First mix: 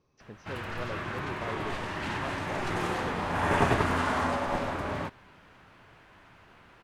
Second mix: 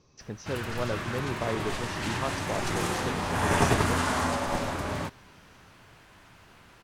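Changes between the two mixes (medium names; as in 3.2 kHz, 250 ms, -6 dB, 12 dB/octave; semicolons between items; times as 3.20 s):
speech +7.0 dB; master: add tone controls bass +3 dB, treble +12 dB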